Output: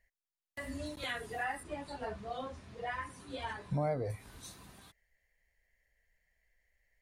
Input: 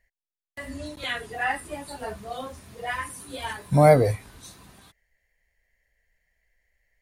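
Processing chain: dynamic bell 2.9 kHz, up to -4 dB, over -40 dBFS, Q 1.2; compression 3:1, threshold -30 dBFS, peak gain reduction 14.5 dB; 1.63–4.10 s: distance through air 97 m; trim -4.5 dB

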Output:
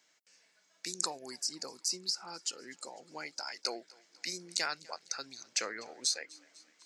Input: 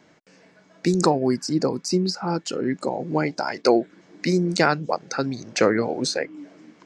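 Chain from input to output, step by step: differentiator; thinning echo 249 ms, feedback 62%, high-pass 460 Hz, level -23 dB; Chebyshev shaper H 5 -44 dB, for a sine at -10 dBFS; trim -1 dB

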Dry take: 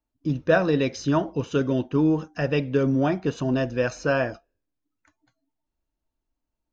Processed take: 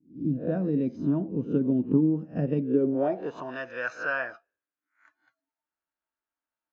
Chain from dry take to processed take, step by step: reverse spectral sustain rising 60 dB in 0.33 s; peaking EQ 1.1 kHz -4 dB 0.89 oct; in parallel at 0 dB: compression, threshold -28 dBFS, peak gain reduction 13.5 dB; 1.51–2.65 s: on the sum: transient shaper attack +8 dB, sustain 0 dB; band-pass sweep 220 Hz -> 1.4 kHz, 2.58–3.58 s

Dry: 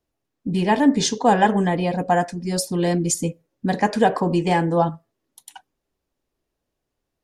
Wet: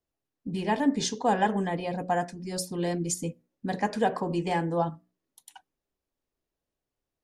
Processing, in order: hum notches 60/120/180/240/300/360 Hz; trim -8 dB

